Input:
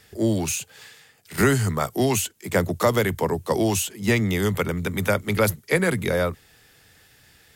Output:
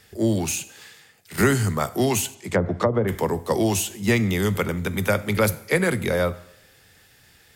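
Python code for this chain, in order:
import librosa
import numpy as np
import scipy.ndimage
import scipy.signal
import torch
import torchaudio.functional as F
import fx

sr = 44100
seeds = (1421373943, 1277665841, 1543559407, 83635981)

y = fx.rev_double_slope(x, sr, seeds[0], early_s=0.71, late_s=2.0, knee_db=-25, drr_db=13.5)
y = fx.env_lowpass_down(y, sr, base_hz=530.0, full_db=-14.0, at=(2.34, 3.07), fade=0.02)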